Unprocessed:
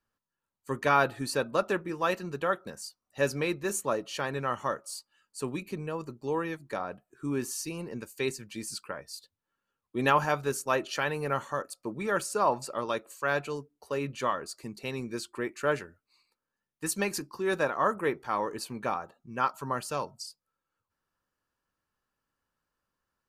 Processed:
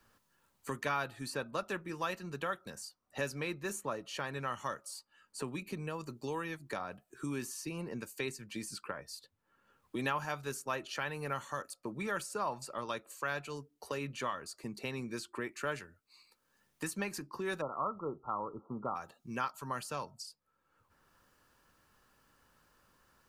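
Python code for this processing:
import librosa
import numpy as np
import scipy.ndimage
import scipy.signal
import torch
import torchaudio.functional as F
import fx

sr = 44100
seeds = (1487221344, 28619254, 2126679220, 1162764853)

y = fx.brickwall_lowpass(x, sr, high_hz=1400.0, at=(17.6, 18.95), fade=0.02)
y = fx.dynamic_eq(y, sr, hz=430.0, q=0.81, threshold_db=-41.0, ratio=4.0, max_db=-5)
y = fx.band_squash(y, sr, depth_pct=70)
y = F.gain(torch.from_numpy(y), -5.5).numpy()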